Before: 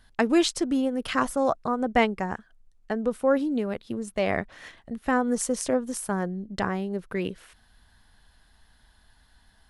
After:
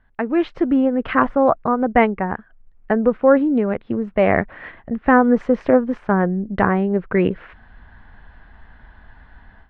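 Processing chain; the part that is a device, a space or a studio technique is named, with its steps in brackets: action camera in a waterproof case (LPF 2200 Hz 24 dB/oct; AGC gain up to 16 dB; gain -1 dB; AAC 64 kbps 48000 Hz)

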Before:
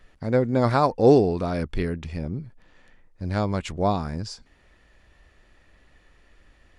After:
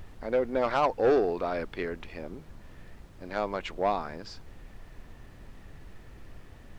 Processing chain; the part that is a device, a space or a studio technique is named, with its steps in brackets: aircraft cabin announcement (BPF 420–3400 Hz; soft clip -17 dBFS, distortion -12 dB; brown noise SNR 13 dB)

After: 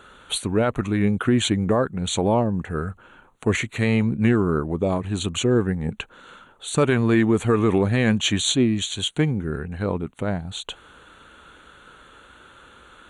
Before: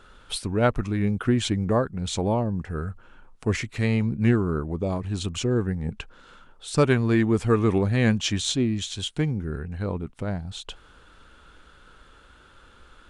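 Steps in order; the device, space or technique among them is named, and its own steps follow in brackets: PA system with an anti-feedback notch (HPF 150 Hz 6 dB/oct; Butterworth band-stop 5100 Hz, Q 2.6; limiter -15.5 dBFS, peak gain reduction 9 dB); gain +6 dB

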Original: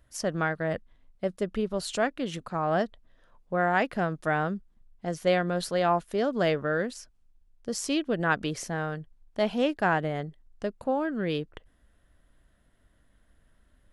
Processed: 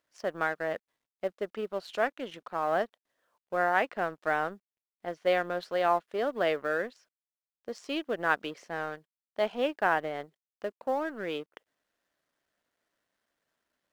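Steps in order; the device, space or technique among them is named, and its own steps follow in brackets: phone line with mismatched companding (BPF 390–3300 Hz; G.711 law mismatch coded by A)

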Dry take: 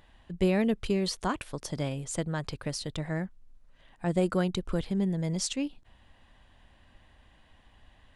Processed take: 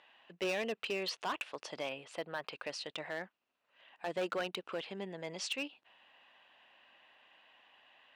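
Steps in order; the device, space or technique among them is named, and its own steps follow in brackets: megaphone (BPF 580–3800 Hz; bell 2700 Hz +9 dB 0.27 oct; hard clip -30 dBFS, distortion -10 dB); HPF 57 Hz; 1.89–2.53 bell 6800 Hz -11.5 dB 0.64 oct

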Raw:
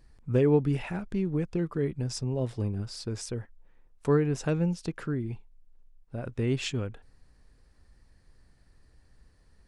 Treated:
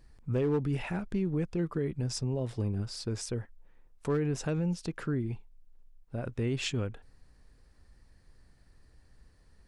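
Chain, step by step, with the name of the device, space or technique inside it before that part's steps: clipper into limiter (hard clip -17.5 dBFS, distortion -21 dB; limiter -23 dBFS, peak gain reduction 5.5 dB)

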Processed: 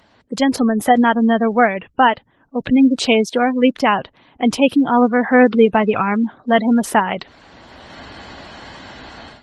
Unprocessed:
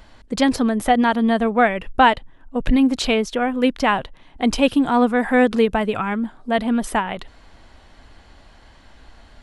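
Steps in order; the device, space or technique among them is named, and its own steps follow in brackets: noise-suppressed video call (HPF 120 Hz 12 dB/oct; spectral gate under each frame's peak -25 dB strong; AGC gain up to 16.5 dB; gain -1 dB; Opus 20 kbps 48000 Hz)

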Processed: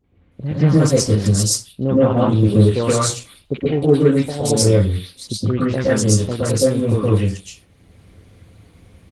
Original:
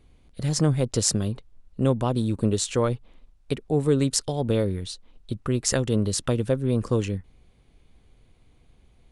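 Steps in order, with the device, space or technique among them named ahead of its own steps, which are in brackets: 1.27–2.02 air absorption 120 m; three bands offset in time lows, mids, highs 40/320 ms, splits 870/3200 Hz; far-field microphone of a smart speaker (reverb RT60 0.30 s, pre-delay 0.113 s, DRR -7 dB; HPF 86 Hz 12 dB/oct; AGC gain up to 10 dB; gain -1 dB; Opus 20 kbps 48000 Hz)

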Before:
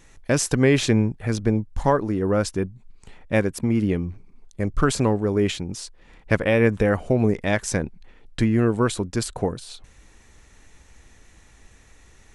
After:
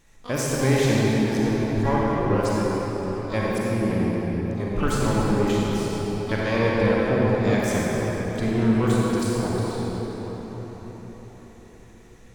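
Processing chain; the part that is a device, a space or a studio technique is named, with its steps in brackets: shimmer-style reverb (harmoniser +12 st -11 dB; reverb RT60 5.3 s, pre-delay 34 ms, DRR -5.5 dB); gain -7.5 dB

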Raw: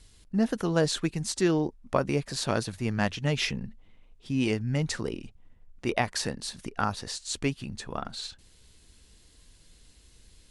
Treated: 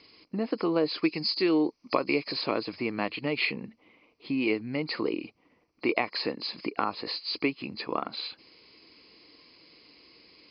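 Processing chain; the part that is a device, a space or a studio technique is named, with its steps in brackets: 1.04–2.32 high shelf 3100 Hz +11.5 dB; hearing aid with frequency lowering (nonlinear frequency compression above 4000 Hz 4:1; compressor 3:1, threshold -32 dBFS, peak gain reduction 11 dB; speaker cabinet 270–5100 Hz, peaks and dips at 310 Hz +9 dB, 470 Hz +4 dB, 1100 Hz +7 dB, 1600 Hz -8 dB, 2300 Hz +10 dB, 3600 Hz -7 dB); gain +5 dB

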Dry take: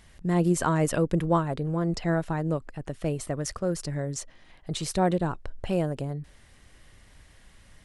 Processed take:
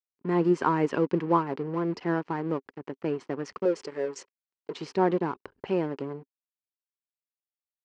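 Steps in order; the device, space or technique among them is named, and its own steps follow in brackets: 3.65–4.74 graphic EQ 125/250/500/1000/2000/8000 Hz -11/-6/+11/-10/+3/+9 dB; blown loudspeaker (crossover distortion -41 dBFS; speaker cabinet 220–4600 Hz, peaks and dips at 270 Hz +5 dB, 400 Hz +8 dB, 630 Hz -8 dB, 980 Hz +6 dB, 3700 Hz -9 dB)

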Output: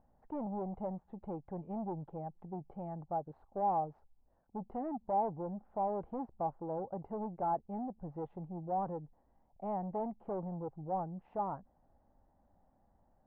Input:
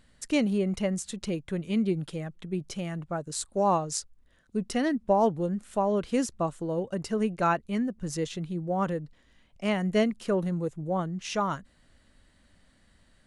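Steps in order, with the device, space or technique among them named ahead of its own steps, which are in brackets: overdriven synthesiser ladder filter (soft clip -28.5 dBFS, distortion -8 dB; ladder low-pass 870 Hz, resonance 75%); gain +3 dB

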